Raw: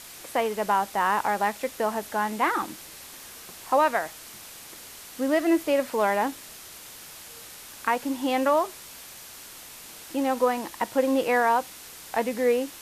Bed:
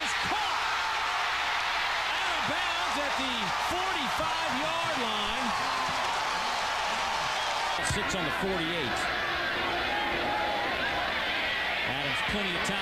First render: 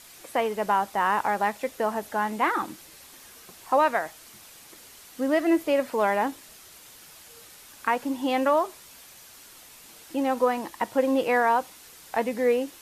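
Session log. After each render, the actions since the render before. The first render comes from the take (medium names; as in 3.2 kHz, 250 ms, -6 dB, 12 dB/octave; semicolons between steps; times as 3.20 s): noise reduction 6 dB, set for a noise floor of -44 dBFS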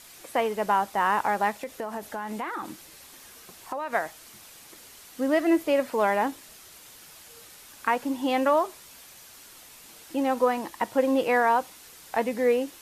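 1.56–3.93 s: compression, threshold -29 dBFS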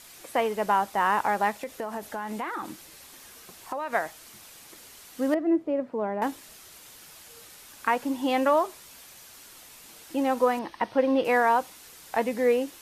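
5.34–6.22 s: band-pass filter 220 Hz, Q 0.69; 10.59–11.25 s: Savitzky-Golay filter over 15 samples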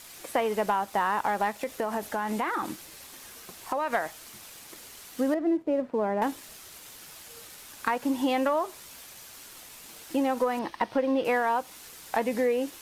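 compression 6:1, threshold -26 dBFS, peak gain reduction 9 dB; waveshaping leveller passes 1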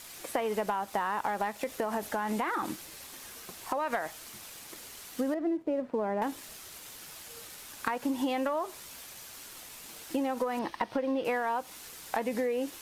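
compression, threshold -27 dBFS, peak gain reduction 6.5 dB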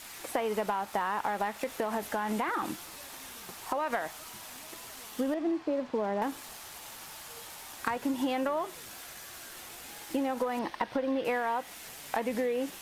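add bed -22.5 dB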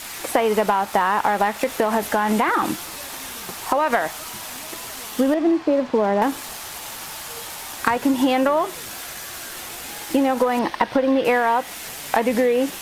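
trim +12 dB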